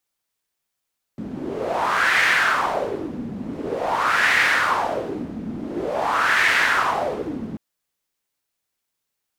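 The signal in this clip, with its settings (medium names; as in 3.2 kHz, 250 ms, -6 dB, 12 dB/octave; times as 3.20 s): wind-like swept noise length 6.39 s, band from 220 Hz, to 1.9 kHz, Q 3.7, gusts 3, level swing 13.5 dB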